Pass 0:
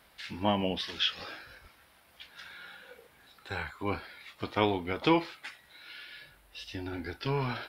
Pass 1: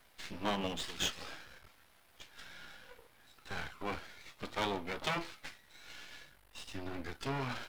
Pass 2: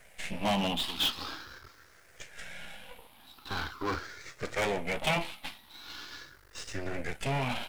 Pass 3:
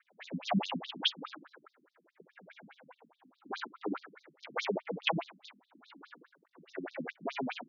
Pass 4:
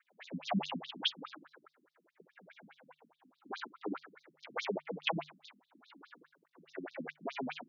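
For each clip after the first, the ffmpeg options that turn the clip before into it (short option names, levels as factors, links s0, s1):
-af "aeval=exprs='max(val(0),0)':c=same,afftfilt=real='re*lt(hypot(re,im),0.158)':imag='im*lt(hypot(re,im),0.158)':win_size=1024:overlap=0.75"
-af "afftfilt=real='re*pow(10,10/40*sin(2*PI*(0.52*log(max(b,1)*sr/1024/100)/log(2)-(0.43)*(pts-256)/sr)))':imag='im*pow(10,10/40*sin(2*PI*(0.52*log(max(b,1)*sr/1024/100)/log(2)-(0.43)*(pts-256)/sr)))':win_size=1024:overlap=0.75,aeval=exprs='clip(val(0),-1,0.0335)':c=same,volume=2"
-af "adynamicsmooth=sensitivity=3:basefreq=1200,afftfilt=real='re*between(b*sr/1024,200*pow(5000/200,0.5+0.5*sin(2*PI*4.8*pts/sr))/1.41,200*pow(5000/200,0.5+0.5*sin(2*PI*4.8*pts/sr))*1.41)':imag='im*between(b*sr/1024,200*pow(5000/200,0.5+0.5*sin(2*PI*4.8*pts/sr))/1.41,200*pow(5000/200,0.5+0.5*sin(2*PI*4.8*pts/sr))*1.41)':win_size=1024:overlap=0.75,volume=2"
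-af "bandreject=f=50:t=h:w=6,bandreject=f=100:t=h:w=6,bandreject=f=150:t=h:w=6,volume=0.708"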